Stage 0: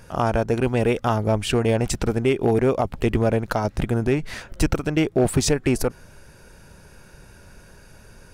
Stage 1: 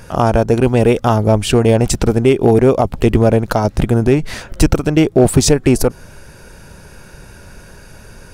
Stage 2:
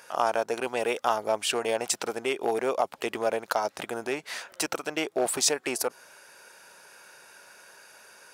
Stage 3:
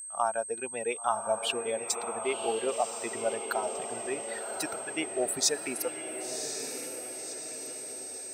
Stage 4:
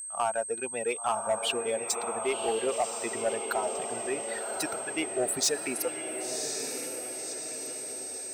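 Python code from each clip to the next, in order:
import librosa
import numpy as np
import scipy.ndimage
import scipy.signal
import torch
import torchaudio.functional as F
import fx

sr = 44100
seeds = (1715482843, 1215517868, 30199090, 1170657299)

y1 = fx.dynamic_eq(x, sr, hz=1900.0, q=0.85, threshold_db=-38.0, ratio=4.0, max_db=-5)
y1 = y1 * librosa.db_to_amplitude(9.0)
y2 = scipy.signal.sosfilt(scipy.signal.butter(2, 710.0, 'highpass', fs=sr, output='sos'), y1)
y2 = y2 * librosa.db_to_amplitude(-7.0)
y3 = fx.bin_expand(y2, sr, power=2.0)
y3 = fx.echo_diffused(y3, sr, ms=1064, feedback_pct=54, wet_db=-7.0)
y3 = y3 + 10.0 ** (-39.0 / 20.0) * np.sin(2.0 * np.pi * 8300.0 * np.arange(len(y3)) / sr)
y4 = 10.0 ** (-21.5 / 20.0) * np.tanh(y3 / 10.0 ** (-21.5 / 20.0))
y4 = y4 * librosa.db_to_amplitude(2.5)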